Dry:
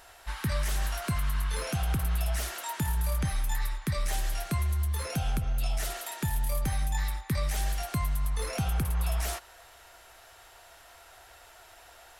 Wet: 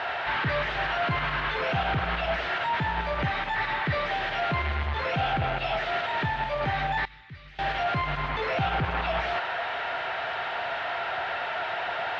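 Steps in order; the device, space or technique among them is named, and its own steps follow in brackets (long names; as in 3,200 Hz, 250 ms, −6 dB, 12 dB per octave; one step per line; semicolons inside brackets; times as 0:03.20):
overdrive pedal into a guitar cabinet (mid-hump overdrive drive 36 dB, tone 1,500 Hz, clips at −19 dBFS; loudspeaker in its box 92–3,500 Hz, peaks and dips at 210 Hz −8 dB, 310 Hz −6 dB, 500 Hz −4 dB, 1,100 Hz −5 dB)
0:07.05–0:07.59: guitar amp tone stack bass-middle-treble 6-0-2
low-pass filter 8,200 Hz 12 dB per octave
level +3.5 dB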